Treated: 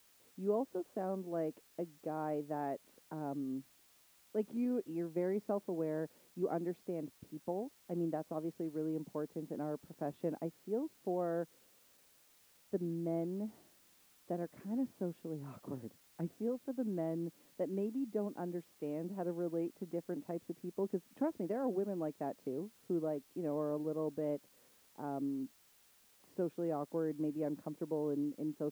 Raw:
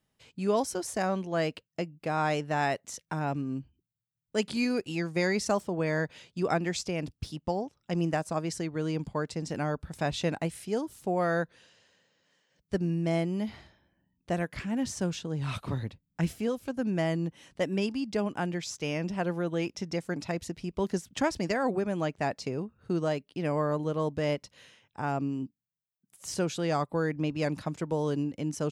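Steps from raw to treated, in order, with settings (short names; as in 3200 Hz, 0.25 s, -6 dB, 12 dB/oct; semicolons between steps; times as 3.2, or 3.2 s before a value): ladder band-pass 370 Hz, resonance 20%; requantised 12-bit, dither triangular; gain +5 dB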